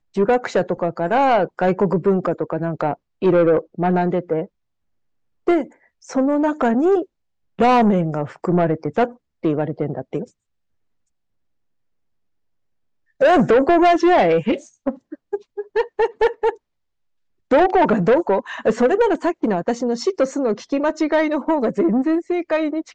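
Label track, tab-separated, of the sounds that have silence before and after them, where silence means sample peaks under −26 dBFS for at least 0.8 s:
5.470000	10.240000	sound
13.210000	16.500000	sound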